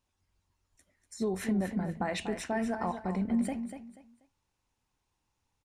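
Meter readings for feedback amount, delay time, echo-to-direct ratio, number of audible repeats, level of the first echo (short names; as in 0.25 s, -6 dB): 26%, 0.242 s, -8.5 dB, 3, -9.0 dB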